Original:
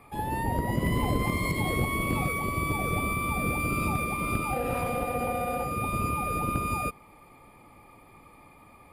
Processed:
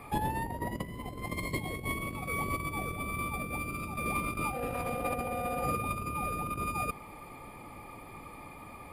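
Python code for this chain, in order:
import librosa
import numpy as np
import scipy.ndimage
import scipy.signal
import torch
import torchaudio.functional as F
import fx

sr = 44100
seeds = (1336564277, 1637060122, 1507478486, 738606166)

y = fx.peak_eq(x, sr, hz=1300.0, db=-13.0, octaves=0.22, at=(1.25, 1.98))
y = fx.over_compress(y, sr, threshold_db=-33.0, ratio=-0.5)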